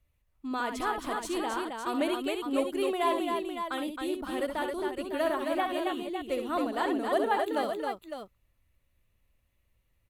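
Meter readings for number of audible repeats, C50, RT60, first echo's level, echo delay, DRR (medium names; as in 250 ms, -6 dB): 3, no reverb, no reverb, -7.5 dB, 66 ms, no reverb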